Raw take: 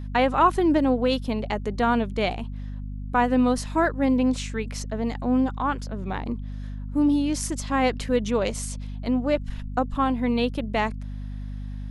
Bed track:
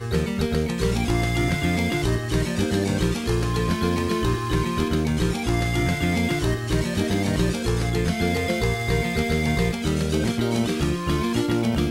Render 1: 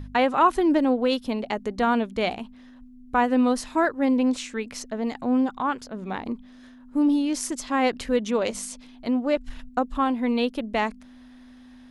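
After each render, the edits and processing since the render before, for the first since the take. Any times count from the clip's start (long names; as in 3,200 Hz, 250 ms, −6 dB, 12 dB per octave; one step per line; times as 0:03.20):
hum removal 50 Hz, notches 4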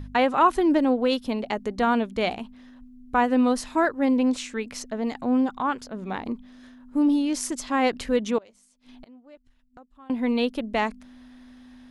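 0:08.38–0:10.10: gate with flip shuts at −32 dBFS, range −26 dB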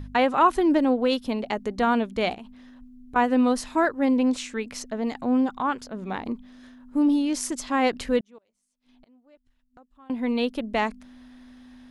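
0:02.34–0:03.16: downward compressor 10 to 1, threshold −36 dBFS
0:08.21–0:10.70: fade in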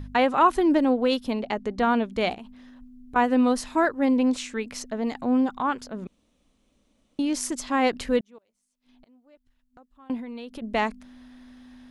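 0:01.39–0:02.11: high-frequency loss of the air 52 metres
0:06.07–0:07.19: fill with room tone
0:10.17–0:10.62: downward compressor 12 to 1, threshold −33 dBFS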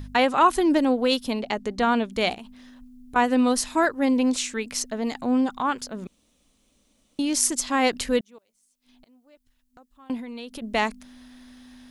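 high-shelf EQ 3,700 Hz +11.5 dB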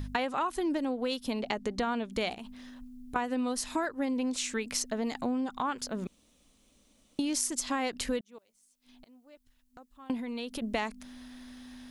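downward compressor 8 to 1, threshold −28 dBFS, peak gain reduction 15 dB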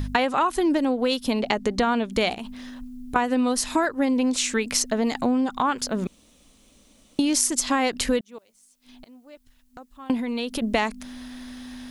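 level +9 dB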